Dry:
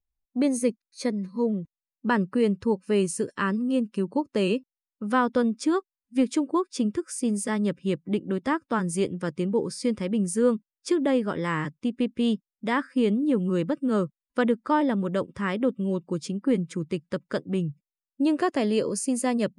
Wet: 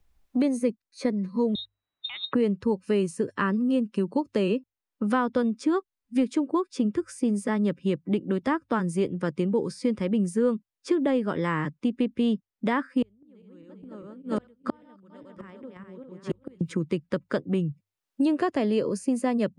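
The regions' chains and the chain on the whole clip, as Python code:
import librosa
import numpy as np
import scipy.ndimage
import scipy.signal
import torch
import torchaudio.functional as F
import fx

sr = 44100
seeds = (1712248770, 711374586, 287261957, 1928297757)

y = fx.chain(x, sr, fx.freq_invert(carrier_hz=3900),
    fx.over_compress(threshold_db=-30.0, ratio=-0.5),
    fx.transformer_sat(knee_hz=1500.0), at=(1.55, 2.33))
y = fx.chain(y, sr, fx.reverse_delay_fb(ms=201, feedback_pct=51, wet_db=-2.0),
    fx.gate_flip(shuts_db=-19.0, range_db=-40), at=(13.02, 16.61))
y = fx.high_shelf(y, sr, hz=3900.0, db=-10.0)
y = fx.hum_notches(y, sr, base_hz=50, count=2)
y = fx.band_squash(y, sr, depth_pct=70)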